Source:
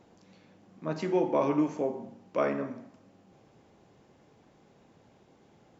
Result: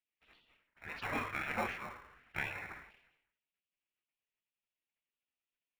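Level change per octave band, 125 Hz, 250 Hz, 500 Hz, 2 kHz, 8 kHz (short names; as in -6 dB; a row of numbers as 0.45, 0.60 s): -10.5 dB, -18.0 dB, -18.5 dB, +5.5 dB, n/a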